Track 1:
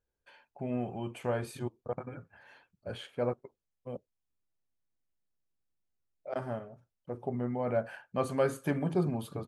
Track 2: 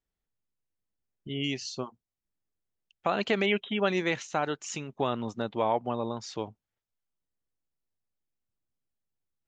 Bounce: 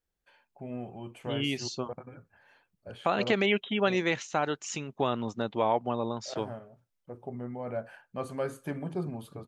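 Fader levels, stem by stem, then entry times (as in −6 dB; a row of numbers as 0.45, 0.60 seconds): −4.5, +0.5 decibels; 0.00, 0.00 seconds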